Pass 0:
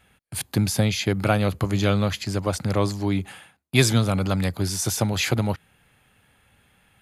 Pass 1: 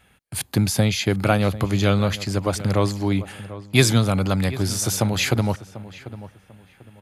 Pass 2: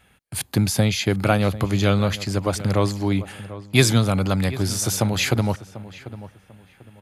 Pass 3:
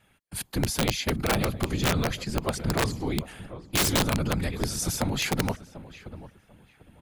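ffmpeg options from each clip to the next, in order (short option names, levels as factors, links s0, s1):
-filter_complex "[0:a]asplit=2[s0][s1];[s1]adelay=743,lowpass=f=2200:p=1,volume=0.168,asplit=2[s2][s3];[s3]adelay=743,lowpass=f=2200:p=1,volume=0.28,asplit=2[s4][s5];[s5]adelay=743,lowpass=f=2200:p=1,volume=0.28[s6];[s0][s2][s4][s6]amix=inputs=4:normalize=0,volume=1.26"
-af anull
-af "afftfilt=real='hypot(re,im)*cos(2*PI*random(0))':imag='hypot(re,im)*sin(2*PI*random(1))':win_size=512:overlap=0.75,aeval=exprs='(mod(6.68*val(0)+1,2)-1)/6.68':c=same"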